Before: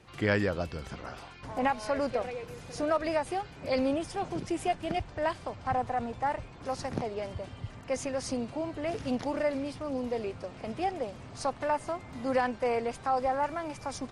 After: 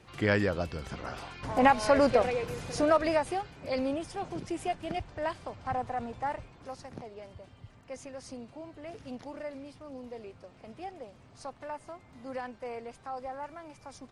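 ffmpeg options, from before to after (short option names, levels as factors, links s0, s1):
-af "volume=2.24,afade=t=in:st=0.83:d=1.01:silence=0.473151,afade=t=out:st=2.38:d=1.22:silence=0.316228,afade=t=out:st=6.32:d=0.5:silence=0.421697"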